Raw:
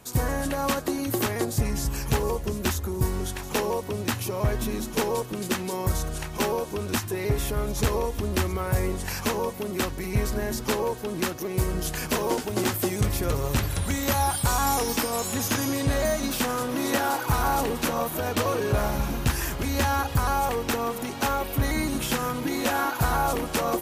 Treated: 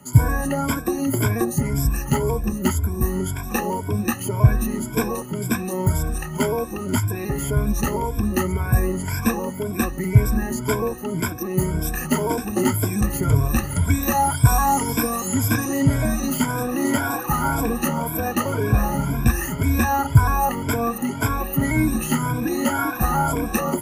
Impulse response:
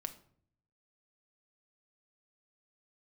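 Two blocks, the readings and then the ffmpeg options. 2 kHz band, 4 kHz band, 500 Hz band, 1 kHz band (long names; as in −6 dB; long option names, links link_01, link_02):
+3.0 dB, −3.0 dB, +1.5 dB, +3.5 dB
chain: -af "afftfilt=real='re*pow(10,21/40*sin(2*PI*(1.7*log(max(b,1)*sr/1024/100)/log(2)-(1.9)*(pts-256)/sr)))':imag='im*pow(10,21/40*sin(2*PI*(1.7*log(max(b,1)*sr/1024/100)/log(2)-(1.9)*(pts-256)/sr)))':win_size=1024:overlap=0.75,equalizer=frequency=125:width_type=o:width=1:gain=5,equalizer=frequency=250:width_type=o:width=1:gain=4,equalizer=frequency=500:width_type=o:width=1:gain=-5,equalizer=frequency=4000:width_type=o:width=1:gain=-11"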